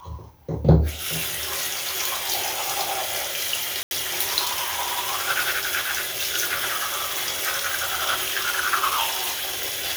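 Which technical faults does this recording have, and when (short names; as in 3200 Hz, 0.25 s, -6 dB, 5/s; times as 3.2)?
3.83–3.91 gap 81 ms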